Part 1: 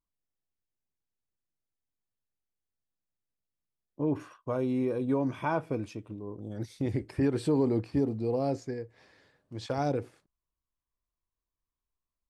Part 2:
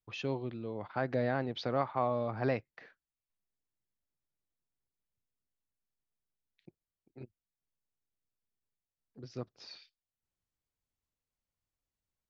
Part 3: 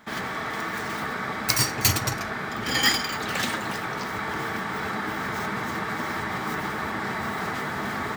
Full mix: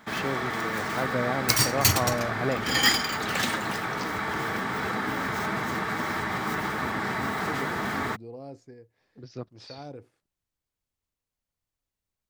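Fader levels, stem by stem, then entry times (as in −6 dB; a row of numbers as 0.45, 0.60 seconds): −12.0, +3.0, 0.0 decibels; 0.00, 0.00, 0.00 seconds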